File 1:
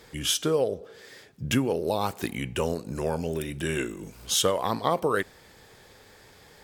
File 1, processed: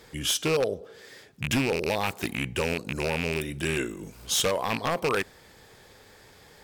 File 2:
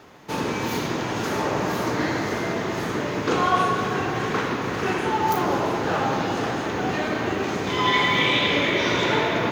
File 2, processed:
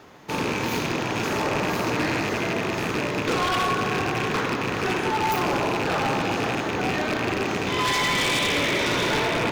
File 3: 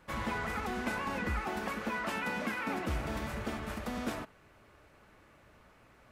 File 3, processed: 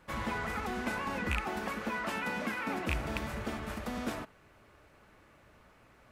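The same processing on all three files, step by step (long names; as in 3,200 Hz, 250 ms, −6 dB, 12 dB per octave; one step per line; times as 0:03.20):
loose part that buzzes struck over −30 dBFS, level −17 dBFS
wave folding −17.5 dBFS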